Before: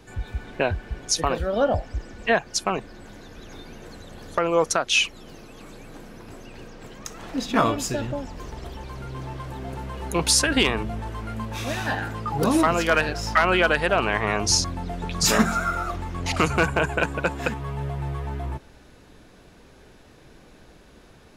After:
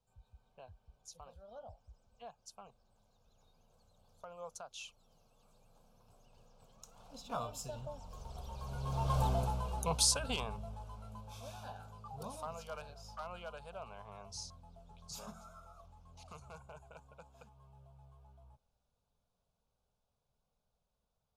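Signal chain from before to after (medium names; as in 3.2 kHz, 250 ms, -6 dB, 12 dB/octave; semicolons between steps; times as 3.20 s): Doppler pass-by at 9.22 s, 11 m/s, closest 1.7 m; static phaser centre 780 Hz, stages 4; trim +6 dB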